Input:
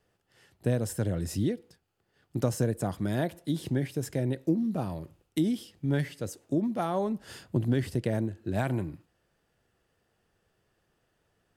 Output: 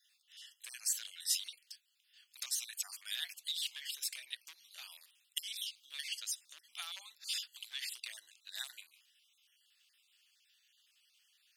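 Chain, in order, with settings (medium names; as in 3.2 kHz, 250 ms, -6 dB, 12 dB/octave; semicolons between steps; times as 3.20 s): random holes in the spectrogram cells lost 35%; in parallel at +2 dB: compression 10:1, threshold -35 dBFS, peak gain reduction 14.5 dB; on the sum: hard clipper -17.5 dBFS, distortion -20 dB; ladder high-pass 2.6 kHz, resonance 40%; trim +10.5 dB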